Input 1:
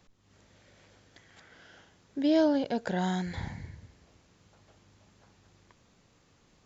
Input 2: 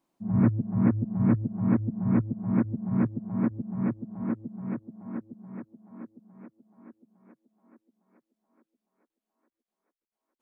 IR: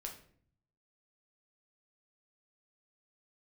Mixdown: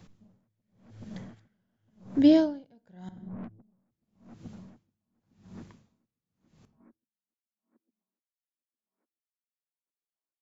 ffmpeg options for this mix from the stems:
-filter_complex "[0:a]equalizer=frequency=150:width=0.78:gain=12,volume=1.5dB,asplit=3[link_01][link_02][link_03];[link_01]atrim=end=3.09,asetpts=PTS-STARTPTS,afade=type=out:start_time=3.086:duration=0.004:curve=hsin[link_04];[link_02]atrim=start=3.09:end=3.92,asetpts=PTS-STARTPTS,volume=0[link_05];[link_03]atrim=start=3.92,asetpts=PTS-STARTPTS,afade=type=in:duration=0.004:curve=hsin[link_06];[link_04][link_05][link_06]concat=n=3:v=0:a=1,asplit=2[link_07][link_08];[link_08]volume=-6dB[link_09];[1:a]agate=range=-8dB:threshold=-54dB:ratio=16:detection=peak,acompressor=threshold=-25dB:ratio=6,aeval=exprs='(tanh(44.7*val(0)+0.25)-tanh(0.25))/44.7':channel_layout=same,volume=-4.5dB,asplit=2[link_10][link_11];[link_11]volume=-22.5dB[link_12];[2:a]atrim=start_sample=2205[link_13];[link_09][link_12]amix=inputs=2:normalize=0[link_14];[link_14][link_13]afir=irnorm=-1:irlink=0[link_15];[link_07][link_10][link_15]amix=inputs=3:normalize=0,aeval=exprs='val(0)*pow(10,-39*(0.5-0.5*cos(2*PI*0.89*n/s))/20)':channel_layout=same"

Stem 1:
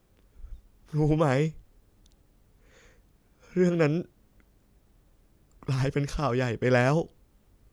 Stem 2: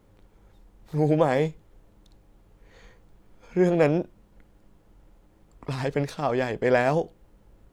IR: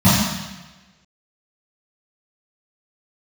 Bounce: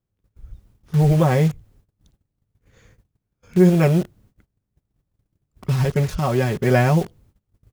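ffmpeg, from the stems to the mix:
-filter_complex "[0:a]volume=1dB[link_01];[1:a]acrusher=bits=5:mix=0:aa=0.000001,adelay=5.3,volume=-0.5dB[link_02];[link_01][link_02]amix=inputs=2:normalize=0,agate=range=-21dB:threshold=-56dB:ratio=16:detection=peak,equalizer=frequency=110:width_type=o:width=1.5:gain=11"

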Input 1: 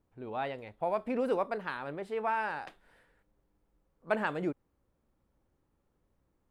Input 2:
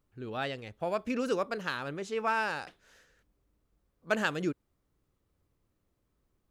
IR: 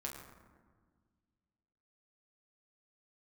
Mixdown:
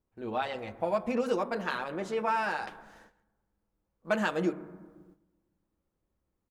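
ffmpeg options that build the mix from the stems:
-filter_complex "[0:a]acompressor=threshold=-31dB:ratio=6,volume=0.5dB,asplit=2[link_01][link_02];[link_02]volume=-3.5dB[link_03];[1:a]volume=-1,adelay=7.1,volume=-3dB[link_04];[2:a]atrim=start_sample=2205[link_05];[link_03][link_05]afir=irnorm=-1:irlink=0[link_06];[link_01][link_04][link_06]amix=inputs=3:normalize=0,agate=range=-11dB:threshold=-57dB:ratio=16:detection=peak"

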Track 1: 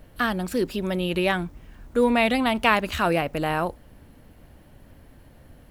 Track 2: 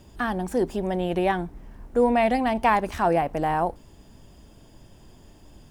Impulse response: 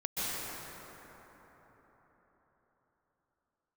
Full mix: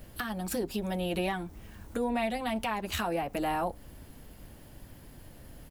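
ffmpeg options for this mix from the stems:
-filter_complex "[0:a]highshelf=frequency=4200:gain=10,volume=-2dB[link_01];[1:a]lowshelf=frequency=230:gain=4.5,adelay=9.5,volume=-7.5dB,asplit=2[link_02][link_03];[link_03]apad=whole_len=251509[link_04];[link_01][link_04]sidechaincompress=threshold=-39dB:ratio=8:attack=46:release=149[link_05];[link_05][link_02]amix=inputs=2:normalize=0,alimiter=limit=-21dB:level=0:latency=1:release=350"

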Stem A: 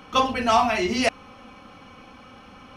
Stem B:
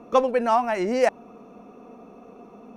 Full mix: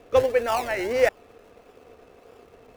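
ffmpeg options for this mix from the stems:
ffmpeg -i stem1.wav -i stem2.wav -filter_complex "[0:a]bass=frequency=250:gain=5,treble=frequency=4000:gain=7,acrusher=samples=30:mix=1:aa=0.000001:lfo=1:lforange=18:lforate=1.6,volume=-13dB[link_01];[1:a]equalizer=frequency=500:width_type=o:width=1:gain=7,equalizer=frequency=1000:width_type=o:width=1:gain=-9,equalizer=frequency=2000:width_type=o:width=1:gain=9,aeval=exprs='sgn(val(0))*max(abs(val(0))-0.00266,0)':channel_layout=same,volume=-1,volume=-3dB[link_02];[link_01][link_02]amix=inputs=2:normalize=0,equalizer=frequency=210:width_type=o:width=0.71:gain=-13" out.wav

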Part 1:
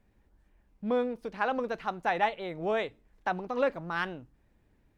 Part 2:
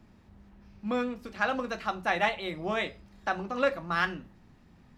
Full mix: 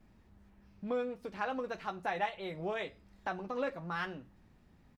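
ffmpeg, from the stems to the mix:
ffmpeg -i stem1.wav -i stem2.wav -filter_complex "[0:a]volume=-1.5dB[link_01];[1:a]adelay=5.8,volume=-7.5dB[link_02];[link_01][link_02]amix=inputs=2:normalize=0,acompressor=threshold=-43dB:ratio=1.5" out.wav

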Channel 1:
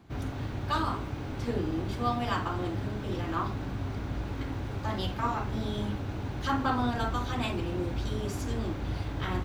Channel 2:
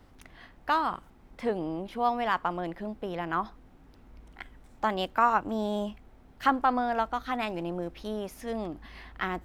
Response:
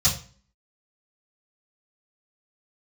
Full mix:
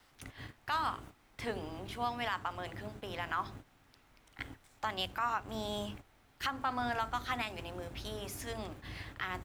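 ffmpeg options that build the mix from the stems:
-filter_complex "[0:a]highshelf=frequency=6400:width_type=q:width=1.5:gain=8,aeval=exprs='sgn(val(0))*max(abs(val(0))-0.00596,0)':channel_layout=same,volume=-12dB[link_01];[1:a]tiltshelf=frequency=810:gain=-10,adelay=1,volume=-6dB,asplit=2[link_02][link_03];[link_03]apad=whole_len=416622[link_04];[link_01][link_04]sidechaingate=range=-23dB:threshold=-54dB:ratio=16:detection=peak[link_05];[link_05][link_02]amix=inputs=2:normalize=0,alimiter=limit=-23dB:level=0:latency=1:release=184"

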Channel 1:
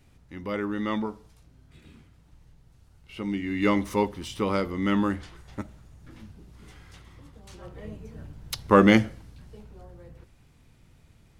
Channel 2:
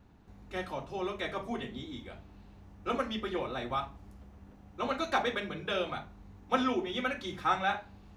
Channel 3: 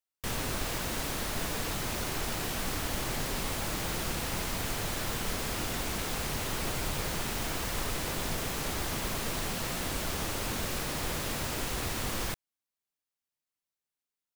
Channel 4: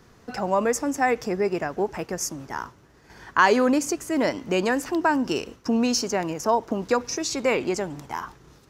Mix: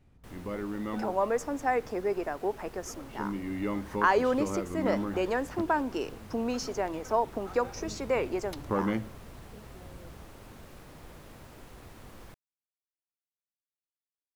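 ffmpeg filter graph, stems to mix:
ffmpeg -i stem1.wav -i stem2.wav -i stem3.wav -i stem4.wav -filter_complex "[0:a]acompressor=threshold=-29dB:ratio=2,volume=-3dB[link_01];[1:a]volume=-17.5dB[link_02];[2:a]equalizer=frequency=12000:width_type=o:width=0.8:gain=3,volume=-13.5dB[link_03];[3:a]highpass=330,adelay=650,volume=-3.5dB[link_04];[link_01][link_02][link_03][link_04]amix=inputs=4:normalize=0,highshelf=frequency=2200:gain=-11.5" out.wav

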